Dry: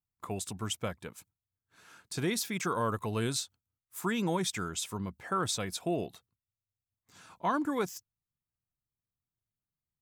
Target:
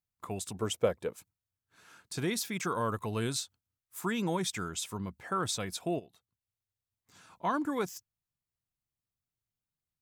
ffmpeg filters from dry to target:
-filter_complex "[0:a]asettb=1/sr,asplit=3[a][b][c];[a]atrim=end=0.544[d];[b]atrim=start=0.54:end=1.16,asetpts=PTS-STARTPTS,afade=t=in:d=0.004:c=qsin,afade=t=out:st=0.616:d=0.004:c=qsin,equalizer=f=480:t=o:w=1:g=13.5[e];[c]atrim=start=1.156[f];[d][e]acrossfade=d=0.004:c1=hsin:c2=qsin[g];[g][f]acrossfade=d=0.004:c1=qsin:c2=hsin,asplit=3[h][i][j];[h]afade=t=out:st=5.98:d=0.02[k];[i]acompressor=threshold=-54dB:ratio=2.5,afade=t=in:st=5.98:d=0.02,afade=t=out:st=7.32:d=0.02[l];[j]afade=t=in:st=7.32:d=0.02[m];[k][l][m]amix=inputs=3:normalize=0,volume=-1dB"

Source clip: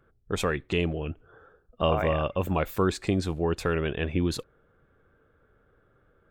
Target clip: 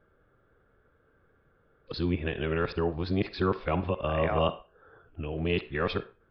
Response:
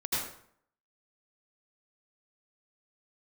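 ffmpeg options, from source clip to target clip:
-filter_complex "[0:a]areverse,asplit=2[a][b];[b]aemphasis=mode=production:type=riaa[c];[1:a]atrim=start_sample=2205,asetrate=83790,aresample=44100,lowpass=2.2k[d];[c][d]afir=irnorm=-1:irlink=0,volume=-12.5dB[e];[a][e]amix=inputs=2:normalize=0,aresample=11025,aresample=44100,volume=-2.5dB"

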